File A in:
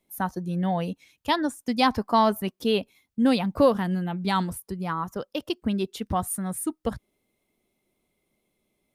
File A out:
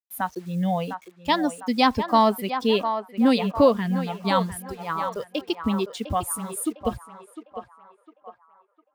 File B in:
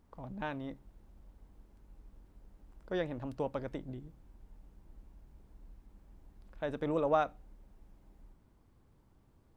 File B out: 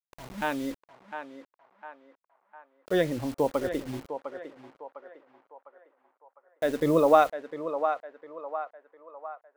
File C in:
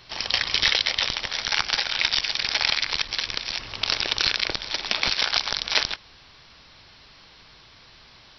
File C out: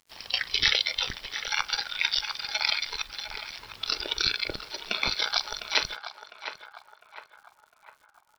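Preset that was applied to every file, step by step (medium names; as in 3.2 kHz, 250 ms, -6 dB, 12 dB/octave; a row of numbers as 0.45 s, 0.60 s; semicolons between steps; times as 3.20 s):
spectral noise reduction 12 dB; bit crusher 9-bit; band-passed feedback delay 704 ms, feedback 53%, band-pass 1 kHz, level -7 dB; peak normalisation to -6 dBFS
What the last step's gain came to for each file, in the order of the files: +2.0 dB, +10.0 dB, -1.5 dB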